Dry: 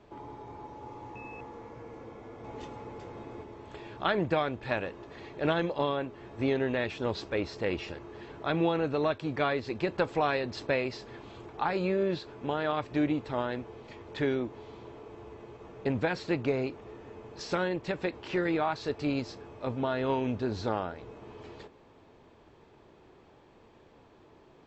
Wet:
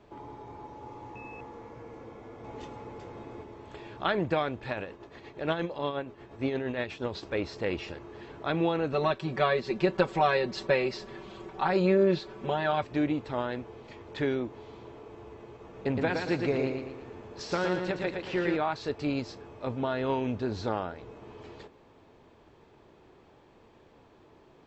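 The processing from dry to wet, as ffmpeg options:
ffmpeg -i in.wav -filter_complex "[0:a]asettb=1/sr,asplit=3[link_01][link_02][link_03];[link_01]atrim=end=4.694[link_04];[link_02]atrim=start=4.69:end=7.23,asetpts=PTS-STARTPTS,afade=type=in:duration=0.004:curve=qsin,afade=type=out:start_time=2.536:duration=0.004:curve=qsin,tremolo=f=8.5:d=0.54[link_05];[link_03]atrim=start=7.226[link_06];[link_04][link_05]acrossfade=duration=0.004:curve1=hsin:curve2=qsin[link_07];[link_07][link_06]acrossfade=duration=0.004:curve1=qsin:curve2=hsin,asettb=1/sr,asplit=3[link_08][link_09][link_10];[link_08]atrim=end=8.924[link_11];[link_09]atrim=start=8.92:end=12.83,asetpts=PTS-STARTPTS,afade=type=in:duration=0.004:curve=qsin,afade=type=out:start_time=3.906:duration=0.004:curve=qsin,aecho=1:1:5.3:0.93,atrim=end_sample=172431[link_12];[link_10]atrim=start=12.826[link_13];[link_11][link_12]acrossfade=duration=0.004:curve1=hsin:curve2=qsin[link_14];[link_14][link_13]acrossfade=duration=0.004:curve1=qsin:curve2=hsin,asettb=1/sr,asplit=3[link_15][link_16][link_17];[link_15]atrim=end=15.624[link_18];[link_16]atrim=start=15.62:end=18.56,asetpts=PTS-STARTPTS,afade=type=in:duration=0.004:curve=qsin,afade=type=out:start_time=2.936:duration=0.004:curve=qsin,aecho=1:1:115|230|345|460|575:0.596|0.262|0.115|0.0507|0.0223,atrim=end_sample=129654[link_19];[link_17]atrim=start=18.556[link_20];[link_18][link_19]acrossfade=duration=0.004:curve1=hsin:curve2=qsin[link_21];[link_21][link_20]acrossfade=duration=0.004:curve1=qsin:curve2=hsin" out.wav

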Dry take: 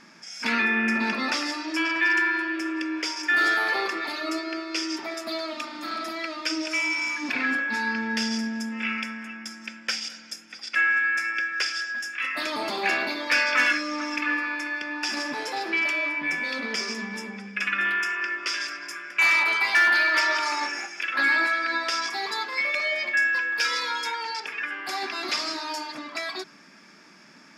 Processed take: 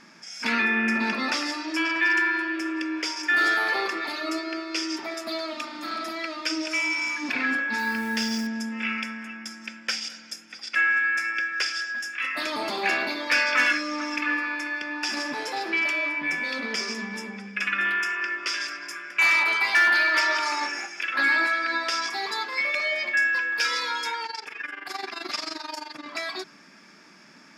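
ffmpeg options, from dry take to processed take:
ffmpeg -i in.wav -filter_complex "[0:a]asettb=1/sr,asplit=3[link_01][link_02][link_03];[link_01]atrim=end=7.784[link_04];[link_02]atrim=start=7.78:end=8.47,asetpts=PTS-STARTPTS,afade=type=in:duration=0.004:curve=qsin,afade=type=out:start_time=0.686:duration=0.004:curve=qsin,acrusher=bits=8:dc=4:mix=0:aa=0.000001[link_05];[link_03]atrim=start=8.466[link_06];[link_04][link_05]acrossfade=duration=0.004:curve1=hsin:curve2=qsin[link_07];[link_07][link_06]acrossfade=duration=0.004:curve1=qsin:curve2=hsin,asettb=1/sr,asplit=3[link_08][link_09][link_10];[link_08]atrim=end=24.264[link_11];[link_09]atrim=start=24.26:end=26.06,asetpts=PTS-STARTPTS,afade=type=in:duration=0.004:curve=qsin,afade=type=out:start_time=1.796:duration=0.004:curve=qsin,tremolo=f=23:d=0.824[link_12];[link_10]atrim=start=26.056[link_13];[link_11][link_12]acrossfade=duration=0.004:curve1=hsin:curve2=qsin[link_14];[link_14][link_13]acrossfade=duration=0.004:curve1=qsin:curve2=hsin" out.wav

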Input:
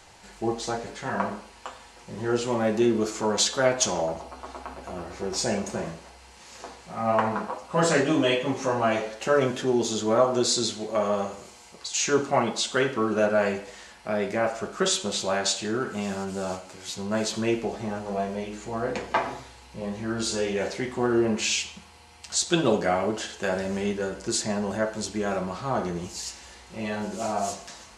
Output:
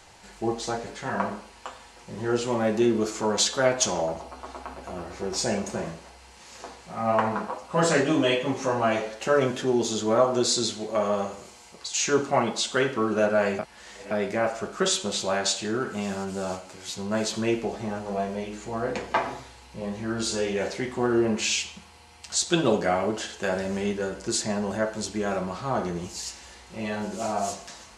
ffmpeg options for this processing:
ffmpeg -i in.wav -filter_complex "[0:a]asplit=3[link_01][link_02][link_03];[link_01]atrim=end=13.592[link_04];[link_02]atrim=start=13.588:end=14.112,asetpts=PTS-STARTPTS,areverse[link_05];[link_03]atrim=start=14.108[link_06];[link_04][link_05]acrossfade=duration=0.004:curve1=hsin:curve2=hsin[link_07];[link_07][link_06]acrossfade=duration=0.004:curve1=hsin:curve2=hsin" out.wav

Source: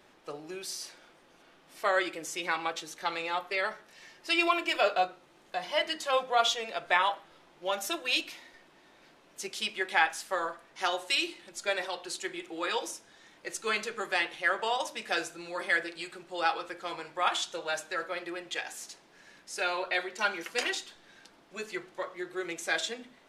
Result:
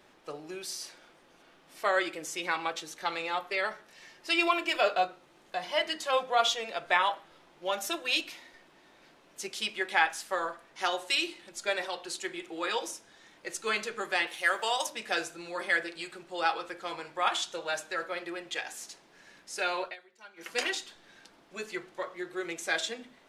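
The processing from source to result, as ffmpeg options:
ffmpeg -i in.wav -filter_complex "[0:a]asettb=1/sr,asplit=3[link_01][link_02][link_03];[link_01]atrim=end=14.274[link_04];[link_02]atrim=start=14.27:end=14.87,asetpts=PTS-STARTPTS,afade=type=in:duration=0.004:curve=qsin,afade=type=out:start_time=0.596:duration=0.004:curve=qsin,aemphasis=mode=production:type=bsi[link_05];[link_03]atrim=start=14.866[link_06];[link_04][link_05]acrossfade=duration=0.004:curve1=hsin:curve2=qsin[link_07];[link_07][link_06]acrossfade=duration=0.004:curve1=qsin:curve2=hsin,asplit=3[link_08][link_09][link_10];[link_08]atrim=end=19.96,asetpts=PTS-STARTPTS,afade=type=out:start_time=19.83:duration=0.13:silence=0.0794328[link_11];[link_09]atrim=start=19.96:end=20.36,asetpts=PTS-STARTPTS,volume=-22dB[link_12];[link_10]atrim=start=20.36,asetpts=PTS-STARTPTS,afade=type=in:duration=0.13:silence=0.0794328[link_13];[link_11][link_12][link_13]concat=n=3:v=0:a=1" out.wav

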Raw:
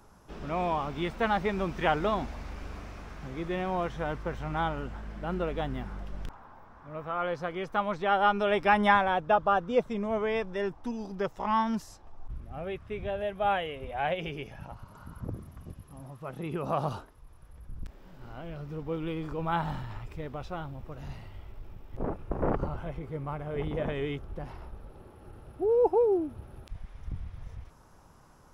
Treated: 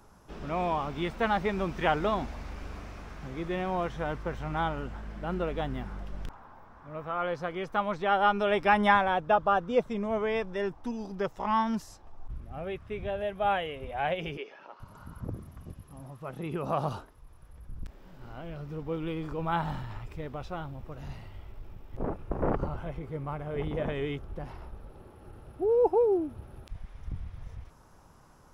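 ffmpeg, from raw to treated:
ffmpeg -i in.wav -filter_complex "[0:a]asettb=1/sr,asplit=3[link_01][link_02][link_03];[link_01]atrim=end=14.374[link_04];[link_02]atrim=start=14.37:end=14.8,asetpts=PTS-STARTPTS,afade=type=in:duration=0.004:curve=qsin,afade=type=out:start_time=0.426:duration=0.004:curve=qsin,highpass=frequency=340:width=0.5412,highpass=frequency=340:width=1.3066,equalizer=frequency=410:width_type=q:width=4:gain=4,equalizer=frequency=740:width_type=q:width=4:gain=-6,equalizer=frequency=1200:width_type=q:width=4:gain=3,lowpass=frequency=5400:width=0.5412,lowpass=frequency=5400:width=1.3066[link_05];[link_03]atrim=start=14.796[link_06];[link_04][link_05]acrossfade=duration=0.004:curve1=hsin:curve2=qsin[link_07];[link_07][link_06]acrossfade=duration=0.004:curve1=qsin:curve2=hsin" out.wav

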